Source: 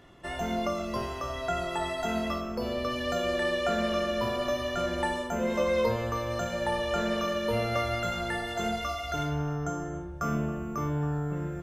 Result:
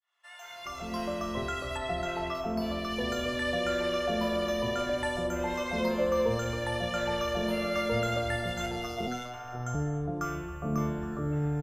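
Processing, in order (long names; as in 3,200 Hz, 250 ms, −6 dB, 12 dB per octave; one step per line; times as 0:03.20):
fade in at the beginning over 0.85 s
0:01.77–0:02.35: high-shelf EQ 6,600 Hz −11 dB
0:08.66–0:09.34: phases set to zero 123 Hz
multiband delay without the direct sound highs, lows 410 ms, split 910 Hz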